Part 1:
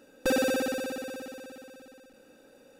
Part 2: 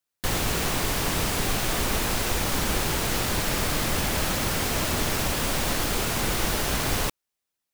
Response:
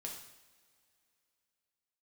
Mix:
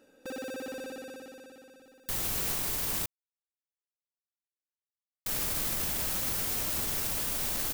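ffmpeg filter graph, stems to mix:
-filter_complex "[0:a]bandreject=f=50:t=h:w=6,bandreject=f=100:t=h:w=6,bandreject=f=150:t=h:w=6,bandreject=f=200:t=h:w=6,bandreject=f=250:t=h:w=6,volume=42.2,asoftclip=hard,volume=0.0237,volume=0.531[s0];[1:a]aemphasis=mode=production:type=50kf,adelay=1850,volume=0.299,asplit=3[s1][s2][s3];[s1]atrim=end=3.06,asetpts=PTS-STARTPTS,afade=t=out:st=3.056:d=0.004:c=hsin[s4];[s2]atrim=start=3.06:end=5.26,asetpts=PTS-STARTPTS,volume=0[s5];[s3]atrim=start=5.26,asetpts=PTS-STARTPTS,afade=t=in:d=0.004:c=hsin[s6];[s4][s5][s6]concat=n=3:v=0:a=1[s7];[s0][s7]amix=inputs=2:normalize=0,alimiter=limit=0.0794:level=0:latency=1:release=22"

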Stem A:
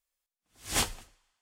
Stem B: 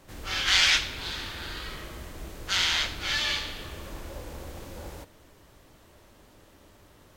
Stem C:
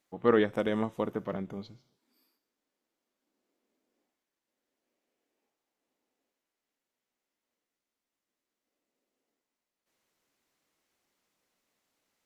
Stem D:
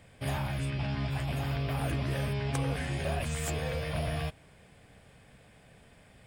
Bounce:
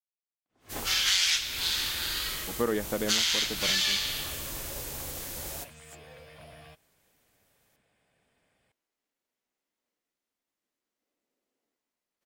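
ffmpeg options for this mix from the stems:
-filter_complex "[0:a]alimiter=limit=0.141:level=0:latency=1:release=187,acrusher=bits=11:mix=0:aa=0.000001,bandpass=f=430:t=q:w=0.52:csg=0,volume=0.75[s0];[1:a]crystalizer=i=6.5:c=0,agate=range=0.0224:threshold=0.0224:ratio=3:detection=peak,adelay=600,volume=0.668[s1];[2:a]adelay=2350,volume=0.944[s2];[3:a]lowshelf=f=210:g=-11,adelay=2450,volume=0.224[s3];[s0][s1][s2][s3]amix=inputs=4:normalize=0,acompressor=threshold=0.0631:ratio=4"

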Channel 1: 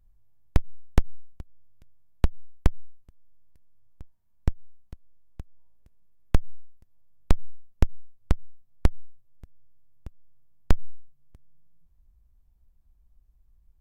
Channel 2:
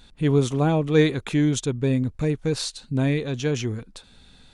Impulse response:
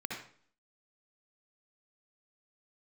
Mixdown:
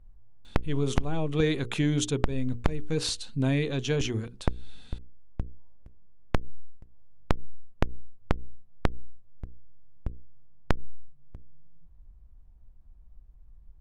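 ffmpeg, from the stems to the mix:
-filter_complex "[0:a]lowpass=f=1200:p=1,volume=1.26[s0];[1:a]equalizer=f=3000:w=2.9:g=4,adelay=450,volume=0.355[s1];[s0][s1]amix=inputs=2:normalize=0,acontrast=84,bandreject=f=60:t=h:w=6,bandreject=f=120:t=h:w=6,bandreject=f=180:t=h:w=6,bandreject=f=240:t=h:w=6,bandreject=f=300:t=h:w=6,bandreject=f=360:t=h:w=6,bandreject=f=420:t=h:w=6,bandreject=f=480:t=h:w=6,acompressor=threshold=0.1:ratio=8"

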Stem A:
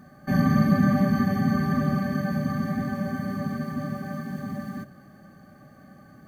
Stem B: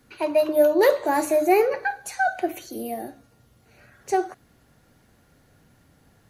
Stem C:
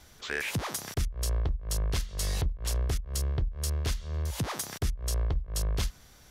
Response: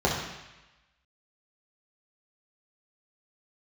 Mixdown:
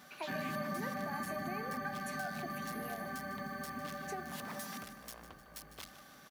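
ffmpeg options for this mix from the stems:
-filter_complex "[0:a]volume=0.944,asplit=2[s0][s1];[s1]volume=0.335[s2];[1:a]acompressor=threshold=0.0708:ratio=6,volume=0.531[s3];[2:a]asoftclip=type=tanh:threshold=0.0158,volume=0.944,asplit=2[s4][s5];[s5]volume=0.211[s6];[s2][s6]amix=inputs=2:normalize=0,aecho=0:1:153|306|459|612|765|918|1071|1224:1|0.54|0.292|0.157|0.085|0.0459|0.0248|0.0134[s7];[s0][s3][s4][s7]amix=inputs=4:normalize=0,highpass=f=1100:p=1,equalizer=f=7200:w=0.78:g=-6,acompressor=threshold=0.0112:ratio=2.5"

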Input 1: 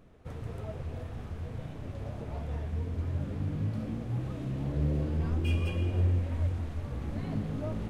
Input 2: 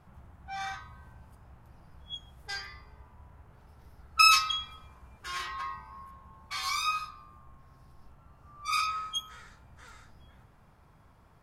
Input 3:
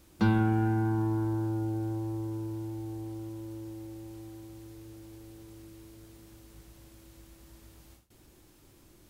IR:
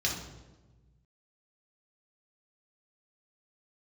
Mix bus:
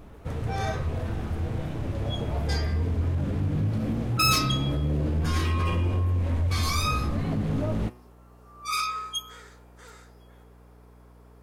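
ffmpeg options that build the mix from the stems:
-filter_complex "[0:a]alimiter=level_in=1.41:limit=0.0631:level=0:latency=1:release=62,volume=0.708,aeval=exprs='0.0891*sin(PI/2*1.58*val(0)/0.0891)':c=same,volume=1.19[s0];[1:a]highshelf=f=6600:g=8.5,asoftclip=type=tanh:threshold=0.1,highpass=f=420:t=q:w=4.9,volume=1.12[s1];[2:a]adelay=850,volume=0.178[s2];[s0][s1][s2]amix=inputs=3:normalize=0,bandreject=f=122.4:t=h:w=4,bandreject=f=244.8:t=h:w=4,bandreject=f=367.2:t=h:w=4,bandreject=f=489.6:t=h:w=4,bandreject=f=612:t=h:w=4,bandreject=f=734.4:t=h:w=4,bandreject=f=856.8:t=h:w=4,bandreject=f=979.2:t=h:w=4,bandreject=f=1101.6:t=h:w=4,bandreject=f=1224:t=h:w=4,bandreject=f=1346.4:t=h:w=4,bandreject=f=1468.8:t=h:w=4,bandreject=f=1591.2:t=h:w=4,bandreject=f=1713.6:t=h:w=4,bandreject=f=1836:t=h:w=4,bandreject=f=1958.4:t=h:w=4,bandreject=f=2080.8:t=h:w=4,bandreject=f=2203.2:t=h:w=4,bandreject=f=2325.6:t=h:w=4,bandreject=f=2448:t=h:w=4,bandreject=f=2570.4:t=h:w=4,bandreject=f=2692.8:t=h:w=4,bandreject=f=2815.2:t=h:w=4,bandreject=f=2937.6:t=h:w=4,bandreject=f=3060:t=h:w=4,bandreject=f=3182.4:t=h:w=4,bandreject=f=3304.8:t=h:w=4,aeval=exprs='val(0)+0.00282*(sin(2*PI*60*n/s)+sin(2*PI*2*60*n/s)/2+sin(2*PI*3*60*n/s)/3+sin(2*PI*4*60*n/s)/4+sin(2*PI*5*60*n/s)/5)':c=same"

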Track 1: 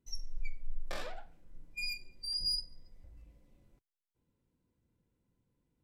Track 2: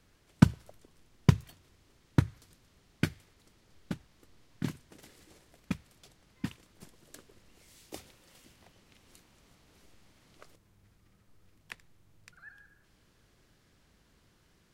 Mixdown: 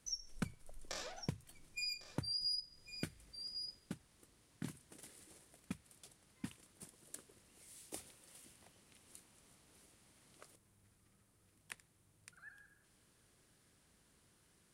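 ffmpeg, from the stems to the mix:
-filter_complex "[0:a]equalizer=f=6300:w=1.3:g=15,volume=0.668,asplit=2[s0][s1];[s1]volume=0.158[s2];[1:a]equalizer=f=9500:t=o:w=0.57:g=14,aeval=exprs='0.708*(cos(1*acos(clip(val(0)/0.708,-1,1)))-cos(1*PI/2))+0.1*(cos(5*acos(clip(val(0)/0.708,-1,1)))-cos(5*PI/2))':c=same,volume=0.316[s3];[s2]aecho=0:1:1102:1[s4];[s0][s3][s4]amix=inputs=3:normalize=0,highpass=f=70:p=1,acompressor=threshold=0.00794:ratio=2.5"

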